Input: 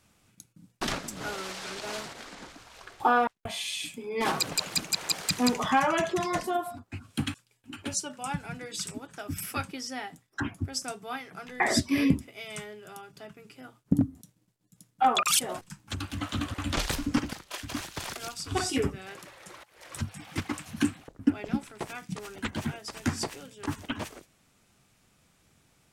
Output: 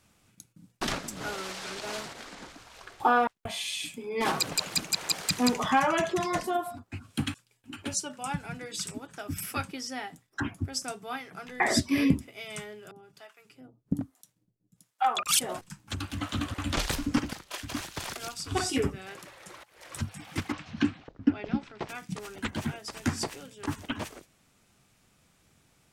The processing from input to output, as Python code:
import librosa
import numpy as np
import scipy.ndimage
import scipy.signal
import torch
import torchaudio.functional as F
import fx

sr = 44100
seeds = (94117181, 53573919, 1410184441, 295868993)

y = fx.harmonic_tremolo(x, sr, hz=1.2, depth_pct=100, crossover_hz=590.0, at=(12.91, 15.29))
y = fx.lowpass(y, sr, hz=5100.0, slope=24, at=(20.52, 21.89))